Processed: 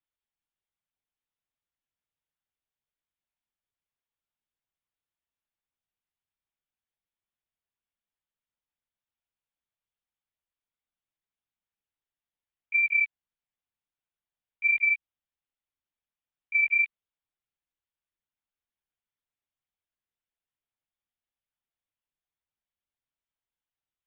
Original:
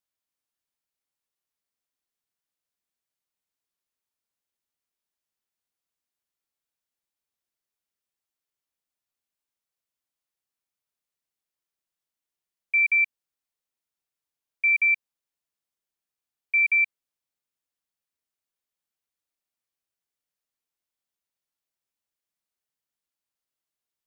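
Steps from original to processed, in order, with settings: LPC vocoder at 8 kHz whisper; trim -3 dB

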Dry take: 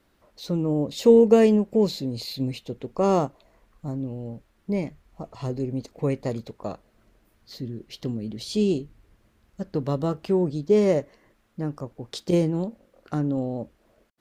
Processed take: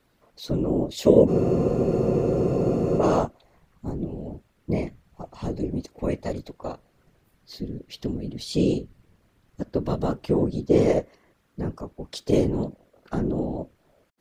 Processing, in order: whisper effect; spectral freeze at 1.29 s, 1.70 s

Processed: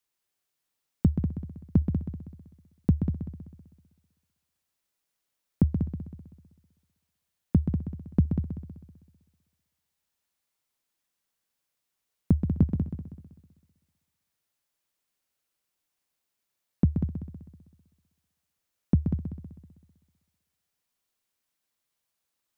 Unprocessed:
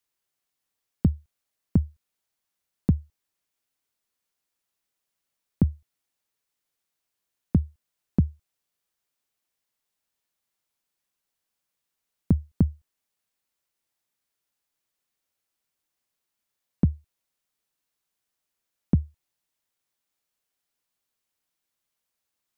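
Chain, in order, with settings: multi-head delay 64 ms, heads second and third, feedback 44%, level -7.5 dB; trim -1 dB

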